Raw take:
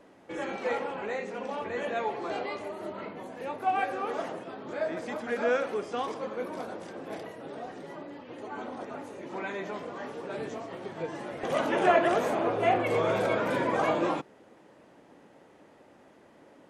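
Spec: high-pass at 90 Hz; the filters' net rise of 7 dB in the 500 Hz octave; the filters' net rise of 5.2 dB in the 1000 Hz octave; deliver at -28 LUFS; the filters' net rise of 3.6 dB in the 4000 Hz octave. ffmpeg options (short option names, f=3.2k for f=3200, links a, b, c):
-af "highpass=90,equalizer=f=500:t=o:g=7.5,equalizer=f=1k:t=o:g=3.5,equalizer=f=4k:t=o:g=4.5,volume=-2.5dB"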